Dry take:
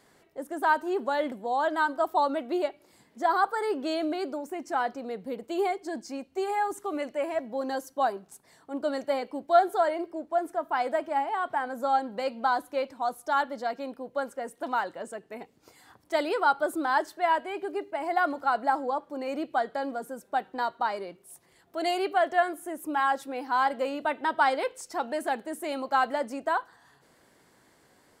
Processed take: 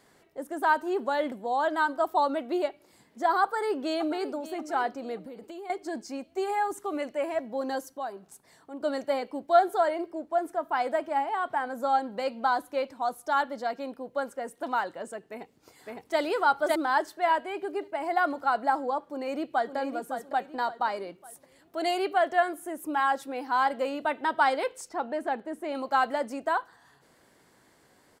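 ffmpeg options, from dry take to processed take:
ffmpeg -i in.wav -filter_complex "[0:a]asplit=2[link_01][link_02];[link_02]afade=type=in:start_time=3.42:duration=0.01,afade=type=out:start_time=4.28:duration=0.01,aecho=0:1:580|1160|1740|2320:0.199526|0.0798105|0.0319242|0.0127697[link_03];[link_01][link_03]amix=inputs=2:normalize=0,asettb=1/sr,asplit=3[link_04][link_05][link_06];[link_04]atrim=end=5.164[link_07];[link_05]atrim=start=5.16:end=5.7,asetpts=PTS-STARTPTS,afade=type=in:duration=0.004:curve=qsin,afade=type=out:start_time=0.536:duration=0.004:curve=qsin,acompressor=threshold=-38dB:ratio=12:attack=3.2:release=140:knee=1:detection=peak[link_08];[link_06]atrim=start=5.696[link_09];[link_07][link_08]acrossfade=duration=0.004:curve1=hsin:curve2=qsin[link_10];[link_10][link_09]acrossfade=duration=0.004:curve1=qsin:curve2=hsin,asettb=1/sr,asplit=3[link_11][link_12][link_13];[link_11]atrim=end=7.894[link_14];[link_12]atrim=start=7.89:end=8.81,asetpts=PTS-STARTPTS,afade=type=in:duration=0.004:curve=qsin,afade=type=out:start_time=0.916:duration=0.004:curve=qsin,acompressor=threshold=-46dB:ratio=1.5:attack=3.2:release=140:knee=1:detection=peak[link_15];[link_13]atrim=start=8.806[link_16];[link_14][link_15]acrossfade=duration=0.004:curve1=hsin:curve2=qsin[link_17];[link_17][link_16]acrossfade=duration=0.004:curve1=qsin:curve2=hsin,asplit=2[link_18][link_19];[link_19]afade=type=in:start_time=15.23:duration=0.01,afade=type=out:start_time=16.19:duration=0.01,aecho=0:1:560|1120|1680:0.944061|0.141609|0.0212414[link_20];[link_18][link_20]amix=inputs=2:normalize=0,asplit=2[link_21][link_22];[link_22]afade=type=in:start_time=19.08:duration=0.01,afade=type=out:start_time=19.76:duration=0.01,aecho=0:1:560|1120|1680|2240:0.375837|0.150335|0.060134|0.0240536[link_23];[link_21][link_23]amix=inputs=2:normalize=0,asettb=1/sr,asplit=3[link_24][link_25][link_26];[link_24]atrim=end=24.894[link_27];[link_25]atrim=start=24.89:end=25.75,asetpts=PTS-STARTPTS,afade=type=in:duration=0.004:curve=qsin,afade=type=out:start_time=0.856:duration=0.004:curve=qsin,lowpass=frequency=1800:poles=1[link_28];[link_26]atrim=start=25.746[link_29];[link_27][link_28]acrossfade=duration=0.004:curve1=hsin:curve2=qsin[link_30];[link_30][link_29]acrossfade=duration=0.004:curve1=qsin:curve2=hsin" out.wav

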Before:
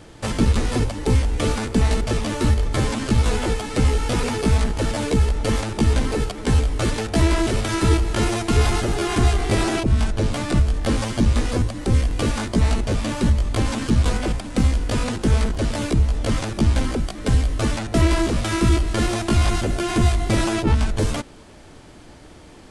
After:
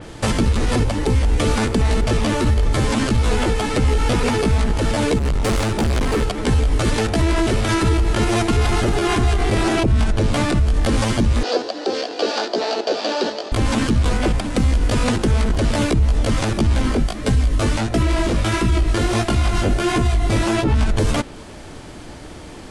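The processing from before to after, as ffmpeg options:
ffmpeg -i in.wav -filter_complex "[0:a]asettb=1/sr,asplit=3[link_01][link_02][link_03];[link_01]atrim=end=5.184[link_04];[link_02]atrim=start=5.18:end=6.23,asetpts=PTS-STARTPTS,afade=type=in:duration=0.004:curve=qsin,afade=type=out:start_time=1.046:duration=0.004:curve=qsin,volume=24dB,asoftclip=hard,volume=-24dB[link_05];[link_03]atrim=start=6.226[link_06];[link_04][link_05]acrossfade=duration=0.004:curve1=hsin:curve2=qsin[link_07];[link_07][link_06]acrossfade=duration=0.004:curve1=qsin:curve2=hsin,asettb=1/sr,asplit=3[link_08][link_09][link_10];[link_08]atrim=end=11.434[link_11];[link_09]atrim=start=11.43:end=13.52,asetpts=PTS-STARTPTS,afade=type=in:duration=0.004:curve=qsin,afade=type=out:start_time=2.086:duration=0.004:curve=qsin,highpass=frequency=360:width=0.5412,highpass=frequency=360:width=1.3066,equalizer=frequency=440:width_type=q:width=4:gain=4,equalizer=frequency=700:width_type=q:width=4:gain=6,equalizer=frequency=1100:width_type=q:width=4:gain=-6,equalizer=frequency=2100:width_type=q:width=4:gain=-9,equalizer=frequency=4600:width_type=q:width=4:gain=9,lowpass=frequency=6000:width=0.5412,lowpass=frequency=6000:width=1.3066[link_12];[link_10]atrim=start=13.516[link_13];[link_11][link_12]acrossfade=duration=0.004:curve1=hsin:curve2=qsin[link_14];[link_14][link_13]acrossfade=duration=0.004:curve1=qsin:curve2=hsin,asplit=3[link_15][link_16][link_17];[link_15]afade=type=out:start_time=16.81:duration=0.02[link_18];[link_16]flanger=delay=16:depth=4.5:speed=1.5,afade=type=in:start_time=16.81:duration=0.02,afade=type=out:start_time=20.72:duration=0.02[link_19];[link_17]afade=type=in:start_time=20.72:duration=0.02[link_20];[link_18][link_19][link_20]amix=inputs=3:normalize=0,alimiter=limit=-17dB:level=0:latency=1:release=89,adynamicequalizer=threshold=0.00708:dfrequency=4200:dqfactor=0.7:tfrequency=4200:tqfactor=0.7:attack=5:release=100:ratio=0.375:range=2:mode=cutabove:tftype=highshelf,volume=8dB" out.wav

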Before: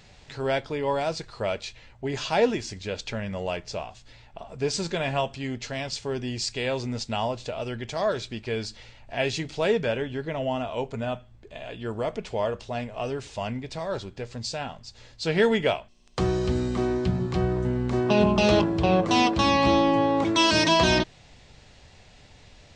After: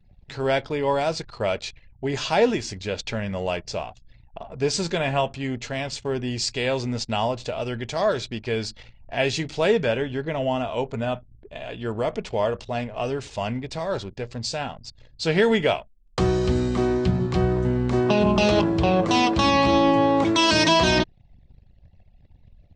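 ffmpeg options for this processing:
ffmpeg -i in.wav -filter_complex "[0:a]asettb=1/sr,asplit=3[link_01][link_02][link_03];[link_01]atrim=end=4.984[link_04];[link_02]atrim=start=4.98:end=6.31,asetpts=PTS-STARTPTS,afade=type=in:duration=0.004:curve=qsin,afade=type=out:start_time=1.326:duration=0.004:curve=qsin,equalizer=frequency=5000:width_type=o:width=0.8:gain=-5[link_05];[link_03]atrim=start=6.306[link_06];[link_04][link_05]acrossfade=duration=0.004:curve1=hsin:curve2=qsin[link_07];[link_07][link_06]acrossfade=duration=0.004:curve1=qsin:curve2=hsin,anlmdn=0.0251,alimiter=level_in=12dB:limit=-1dB:release=50:level=0:latency=1,volume=-8.5dB" out.wav

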